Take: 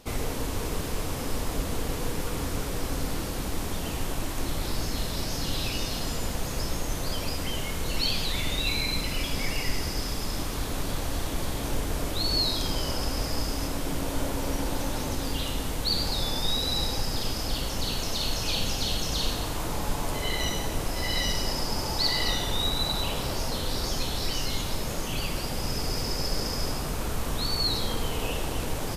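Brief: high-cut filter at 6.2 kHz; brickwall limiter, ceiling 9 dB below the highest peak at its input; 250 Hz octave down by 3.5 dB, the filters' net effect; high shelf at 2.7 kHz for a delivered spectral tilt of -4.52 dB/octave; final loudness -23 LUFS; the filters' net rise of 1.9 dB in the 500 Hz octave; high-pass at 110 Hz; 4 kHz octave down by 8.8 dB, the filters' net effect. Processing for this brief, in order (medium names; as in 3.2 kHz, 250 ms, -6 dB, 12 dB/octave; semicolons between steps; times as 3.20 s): high-pass 110 Hz; low-pass 6.2 kHz; peaking EQ 250 Hz -5.5 dB; peaking EQ 500 Hz +4 dB; treble shelf 2.7 kHz -4 dB; peaking EQ 4 kHz -6.5 dB; trim +15 dB; peak limiter -14 dBFS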